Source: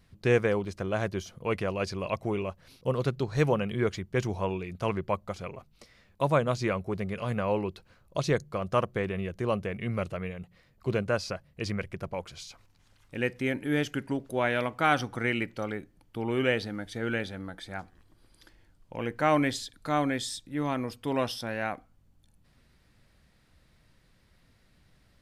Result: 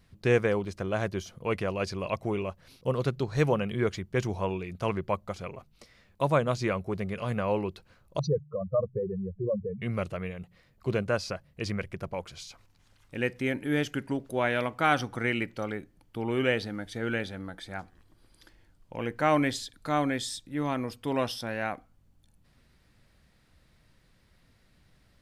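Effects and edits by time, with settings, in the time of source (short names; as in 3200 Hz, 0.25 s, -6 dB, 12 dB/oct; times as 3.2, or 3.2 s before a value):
8.19–9.82 spectral contrast raised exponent 3.7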